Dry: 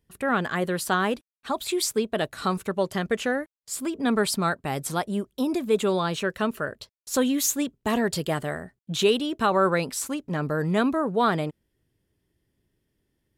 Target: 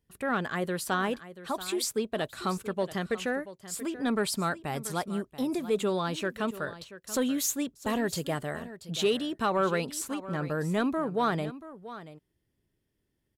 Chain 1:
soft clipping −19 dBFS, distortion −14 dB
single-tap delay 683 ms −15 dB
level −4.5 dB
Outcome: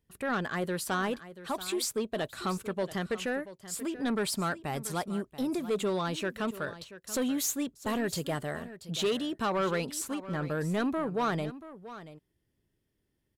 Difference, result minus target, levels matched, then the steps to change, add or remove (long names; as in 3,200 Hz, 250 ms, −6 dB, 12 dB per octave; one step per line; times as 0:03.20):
soft clipping: distortion +11 dB
change: soft clipping −11 dBFS, distortion −26 dB